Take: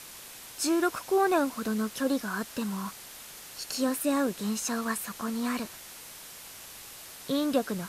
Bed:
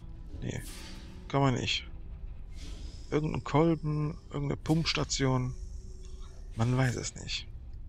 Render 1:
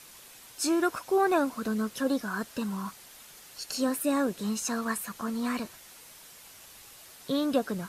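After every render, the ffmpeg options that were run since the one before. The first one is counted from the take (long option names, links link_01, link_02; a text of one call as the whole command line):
ffmpeg -i in.wav -af "afftdn=noise_reduction=6:noise_floor=-46" out.wav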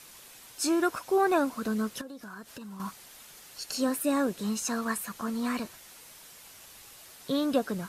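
ffmpeg -i in.wav -filter_complex "[0:a]asettb=1/sr,asplit=3[link_01][link_02][link_03];[link_01]atrim=end=2.014[link_04];[link_02]atrim=start=2.01:end=2.8,asetpts=PTS-STARTPTS,afade=type=in:duration=0.004:curve=qsin,afade=type=out:start_time=0.786:duration=0.004:curve=qsin,acompressor=threshold=-40dB:ratio=8:attack=3.2:release=140:knee=1:detection=peak[link_05];[link_03]atrim=start=2.796[link_06];[link_04][link_05]acrossfade=duration=0.004:curve1=hsin:curve2=qsin[link_07];[link_07][link_06]acrossfade=duration=0.004:curve1=qsin:curve2=hsin" out.wav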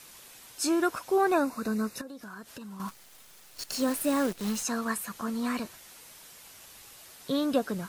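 ffmpeg -i in.wav -filter_complex "[0:a]asettb=1/sr,asplit=3[link_01][link_02][link_03];[link_01]atrim=end=1.324[link_04];[link_02]atrim=start=1.32:end=2.07,asetpts=PTS-STARTPTS,afade=type=in:duration=0.004:curve=qsin,afade=type=out:start_time=0.746:duration=0.004:curve=qsin,asuperstop=centerf=3200:order=8:qfactor=4.2[link_05];[link_03]atrim=start=2.066[link_06];[link_04][link_05]acrossfade=duration=0.004:curve1=hsin:curve2=qsin[link_07];[link_07][link_06]acrossfade=duration=0.004:curve1=qsin:curve2=hsin,asplit=3[link_08][link_09][link_10];[link_08]afade=type=out:start_time=2.88:duration=0.02[link_11];[link_09]acrusher=bits=7:dc=4:mix=0:aa=0.000001,afade=type=in:start_time=2.88:duration=0.02,afade=type=out:start_time=4.62:duration=0.02[link_12];[link_10]afade=type=in:start_time=4.62:duration=0.02[link_13];[link_11][link_12][link_13]amix=inputs=3:normalize=0" out.wav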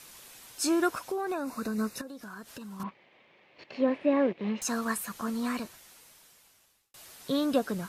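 ffmpeg -i in.wav -filter_complex "[0:a]asettb=1/sr,asplit=3[link_01][link_02][link_03];[link_01]atrim=end=1.064[link_04];[link_02]atrim=start=1.06:end=1.78,asetpts=PTS-STARTPTS,afade=type=in:duration=0.004:curve=qsin,afade=type=out:start_time=0.716:duration=0.004:curve=qsin,acompressor=threshold=-28dB:ratio=12:attack=3.2:release=140:knee=1:detection=peak[link_05];[link_03]atrim=start=1.776[link_06];[link_04][link_05]acrossfade=duration=0.004:curve1=hsin:curve2=qsin[link_07];[link_07][link_06]acrossfade=duration=0.004:curve1=qsin:curve2=hsin,asettb=1/sr,asplit=3[link_08][link_09][link_10];[link_08]atrim=end=2.834[link_11];[link_09]atrim=start=2.83:end=4.62,asetpts=PTS-STARTPTS,afade=type=in:duration=0.004:curve=qsin,afade=type=out:start_time=1.786:duration=0.004:curve=qsin,highpass=140,equalizer=frequency=350:width_type=q:width=4:gain=4,equalizer=frequency=550:width_type=q:width=4:gain=5,equalizer=frequency=1400:width_type=q:width=4:gain=-10,equalizer=frequency=2200:width_type=q:width=4:gain=5,lowpass=frequency=2800:width=0.5412,lowpass=frequency=2800:width=1.3066[link_12];[link_10]atrim=start=4.616[link_13];[link_11][link_12]acrossfade=duration=0.004:curve1=hsin:curve2=qsin[link_14];[link_14][link_13]acrossfade=duration=0.004:curve1=qsin:curve2=hsin,asplit=2[link_15][link_16];[link_15]atrim=end=6.94,asetpts=PTS-STARTPTS,afade=type=out:start_time=5.31:duration=1.63[link_17];[link_16]atrim=start=6.94,asetpts=PTS-STARTPTS,afade=type=in:duration=0.004:curve=hsin[link_18];[link_17][link_18]concat=n=2:v=0:a=1" out.wav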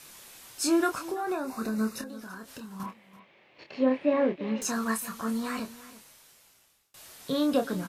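ffmpeg -i in.wav -filter_complex "[0:a]asplit=2[link_01][link_02];[link_02]adelay=27,volume=-6dB[link_03];[link_01][link_03]amix=inputs=2:normalize=0,aecho=1:1:334:0.141" out.wav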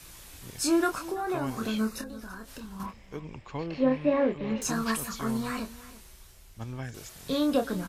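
ffmpeg -i in.wav -i bed.wav -filter_complex "[1:a]volume=-10dB[link_01];[0:a][link_01]amix=inputs=2:normalize=0" out.wav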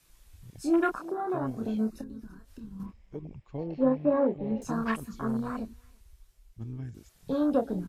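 ffmpeg -i in.wav -af "afwtdn=0.0251" out.wav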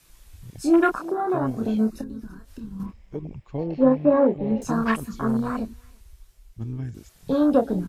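ffmpeg -i in.wav -af "volume=7dB" out.wav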